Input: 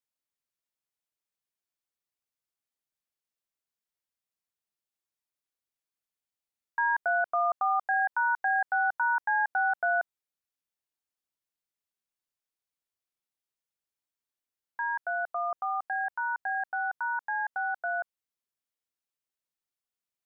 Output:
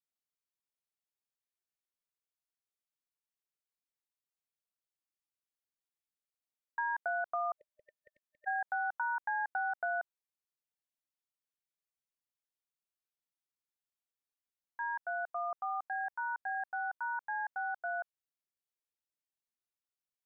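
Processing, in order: spectral repair 7.61–8.45, 620–1800 Hz before; dynamic EQ 820 Hz, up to +3 dB, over -35 dBFS, Q 0.77; compressor, threshold -23 dBFS, peak gain reduction 3 dB; gain -7.5 dB

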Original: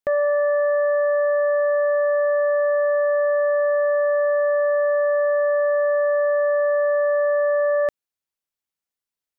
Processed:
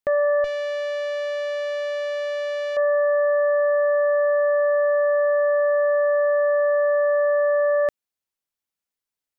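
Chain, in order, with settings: 0.44–2.77 tube stage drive 25 dB, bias 0.55

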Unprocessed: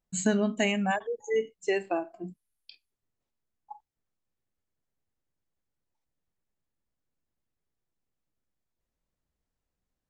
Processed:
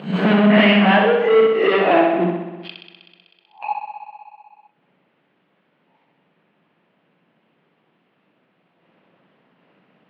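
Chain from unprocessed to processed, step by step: spectral swells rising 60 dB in 0.34 s; sample leveller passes 5; flutter echo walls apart 10.8 m, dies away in 1 s; harmonic-percussive split harmonic -5 dB; upward compressor, threshold -29 dBFS; elliptic band-pass 170–2900 Hz, stop band 40 dB; two-slope reverb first 0.81 s, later 2.9 s, from -19 dB, DRR 18.5 dB; gain +5 dB

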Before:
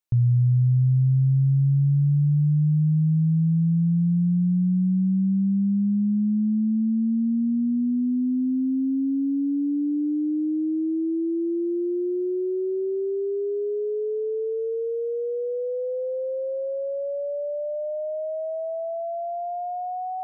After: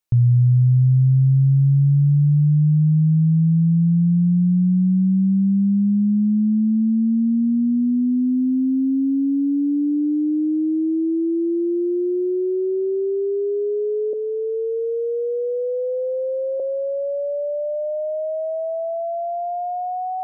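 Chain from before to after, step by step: 14.13–16.6 steep high-pass 430 Hz 96 dB/oct; gain +4.5 dB

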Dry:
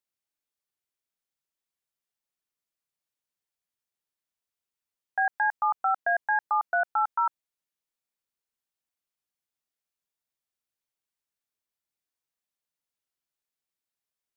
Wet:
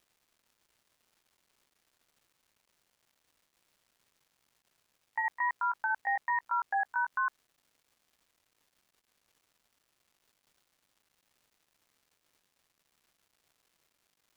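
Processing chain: gliding pitch shift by +4 st ending unshifted; crackle 510/s -58 dBFS; limiter -22 dBFS, peak gain reduction 4.5 dB; gain -1 dB

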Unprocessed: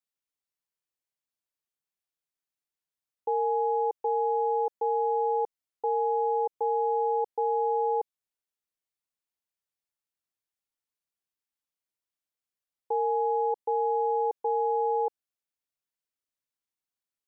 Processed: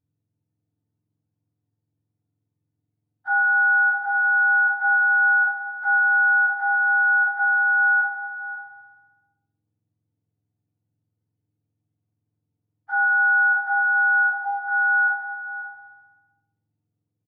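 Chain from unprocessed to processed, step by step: spectrum mirrored in octaves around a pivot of 820 Hz; outdoor echo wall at 93 m, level -15 dB; in parallel at -2 dB: compressor, threshold -37 dBFS, peak gain reduction 12.5 dB; 14.23–14.68 on the sum: fixed phaser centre 740 Hz, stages 4; on a send: feedback echo 0.13 s, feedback 52%, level -10.5 dB; on the sum: FDN reverb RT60 0.64 s, low-frequency decay 1.2×, high-frequency decay 0.65×, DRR -5.5 dB; gain -4 dB

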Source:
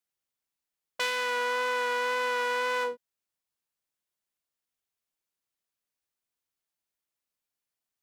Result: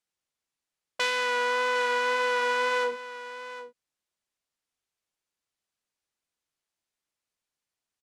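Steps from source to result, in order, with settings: LPF 9200 Hz 12 dB/oct; echo 0.758 s -13.5 dB; gain +2.5 dB

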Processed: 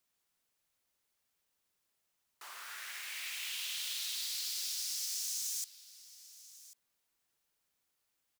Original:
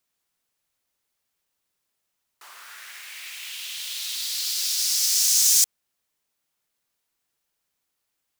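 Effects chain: compressor 12:1, threshold -32 dBFS, peak gain reduction 18 dB; on a send: echo 1.091 s -18 dB; on the sum: gain -3 dB

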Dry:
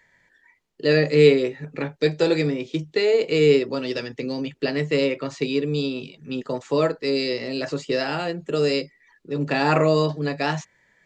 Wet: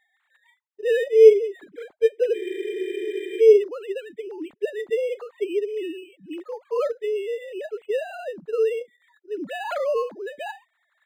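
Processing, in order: sine-wave speech; spectral freeze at 2.38, 1.03 s; decimation joined by straight lines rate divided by 8×

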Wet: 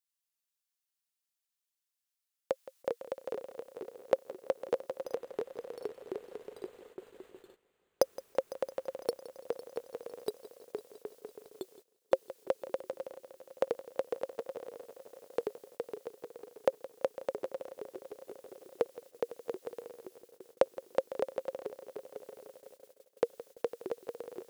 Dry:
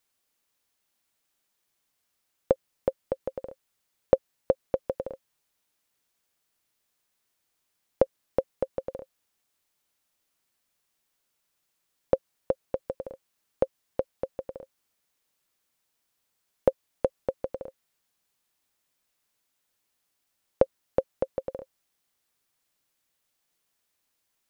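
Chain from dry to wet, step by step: HPF 1100 Hz 6 dB/oct; high shelf 2400 Hz +7.5 dB; 5.04–8.03 careless resampling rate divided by 8×, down none, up hold; notch 2300 Hz, Q 21; echoes that change speed 92 ms, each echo -2 st, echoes 3, each echo -6 dB; multi-head echo 0.168 s, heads first and third, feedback 67%, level -17.5 dB; gate -59 dBFS, range -15 dB; vocal rider within 4 dB 2 s

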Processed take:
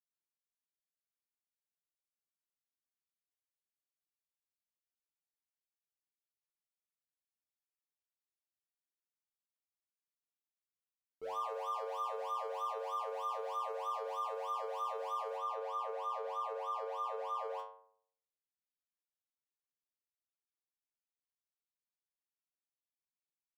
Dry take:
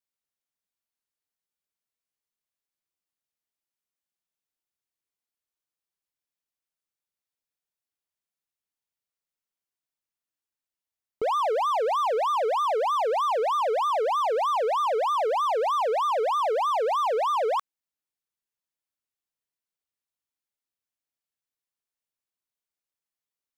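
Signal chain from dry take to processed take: high shelf 4800 Hz +4.5 dB, from 15.36 s -4 dB; metallic resonator 88 Hz, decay 0.71 s, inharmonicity 0.002; gain -4 dB

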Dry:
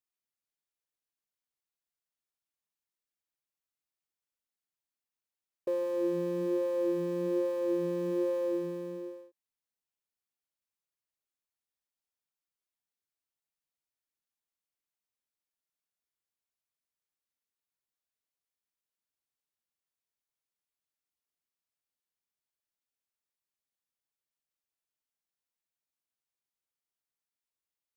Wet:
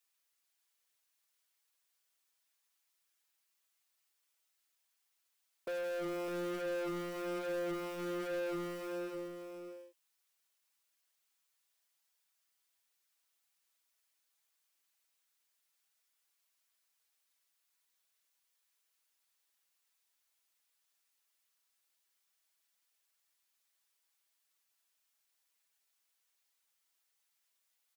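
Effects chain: HPF 1200 Hz 6 dB/oct; comb 6.1 ms, depth 100%; in parallel at -1 dB: limiter -36 dBFS, peak gain reduction 9.5 dB; on the sum: soft clip -40 dBFS, distortion -8 dB; on a send: echo 0.606 s -7.5 dB; on the sum: gain +3.5 dB

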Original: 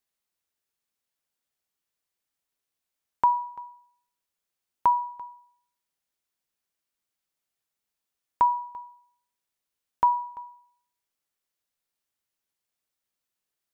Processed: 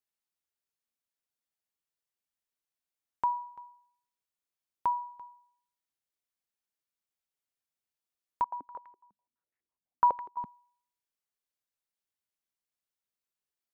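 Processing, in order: 8.44–10.45 stepped low-pass 12 Hz 200–1900 Hz; gain -8 dB

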